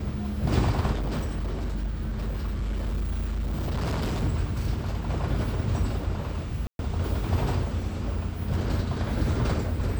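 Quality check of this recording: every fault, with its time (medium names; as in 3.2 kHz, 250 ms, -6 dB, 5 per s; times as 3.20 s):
0.93–4.23 s: clipped -24.5 dBFS
6.67–6.79 s: dropout 121 ms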